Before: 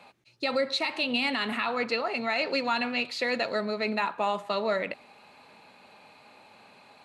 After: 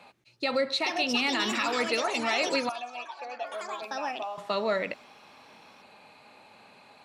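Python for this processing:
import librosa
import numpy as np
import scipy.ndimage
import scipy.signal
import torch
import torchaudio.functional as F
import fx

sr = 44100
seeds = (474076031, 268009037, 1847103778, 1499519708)

y = fx.vowel_filter(x, sr, vowel='a', at=(2.69, 4.38))
y = fx.echo_pitch(y, sr, ms=542, semitones=5, count=3, db_per_echo=-6.0)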